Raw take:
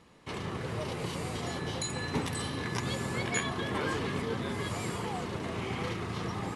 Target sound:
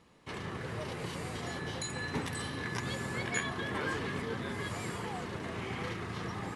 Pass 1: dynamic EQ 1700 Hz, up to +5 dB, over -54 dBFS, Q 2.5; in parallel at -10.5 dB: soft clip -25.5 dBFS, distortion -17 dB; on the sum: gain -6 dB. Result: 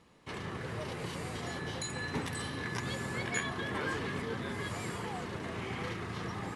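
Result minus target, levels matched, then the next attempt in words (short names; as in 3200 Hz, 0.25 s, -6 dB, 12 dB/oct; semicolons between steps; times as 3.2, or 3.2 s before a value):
soft clip: distortion +11 dB
dynamic EQ 1700 Hz, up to +5 dB, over -54 dBFS, Q 2.5; in parallel at -10.5 dB: soft clip -17 dBFS, distortion -28 dB; on the sum: gain -6 dB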